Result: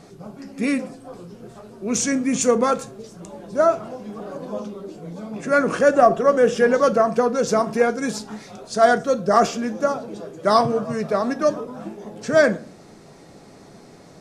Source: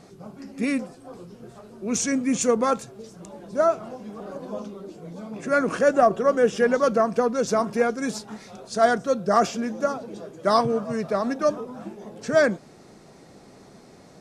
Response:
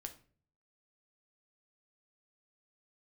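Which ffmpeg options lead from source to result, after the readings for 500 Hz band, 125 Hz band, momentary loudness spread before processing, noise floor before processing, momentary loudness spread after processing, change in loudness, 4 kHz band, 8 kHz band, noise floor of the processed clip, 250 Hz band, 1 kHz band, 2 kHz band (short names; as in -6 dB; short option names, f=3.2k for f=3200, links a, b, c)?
+3.5 dB, +3.5 dB, 19 LU, -50 dBFS, 19 LU, +3.5 dB, +3.0 dB, +3.0 dB, -46 dBFS, +2.5 dB, +3.5 dB, +3.5 dB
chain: -filter_complex "[0:a]asplit=2[a][b];[1:a]atrim=start_sample=2205[c];[b][c]afir=irnorm=-1:irlink=0,volume=6dB[d];[a][d]amix=inputs=2:normalize=0,volume=-3.5dB"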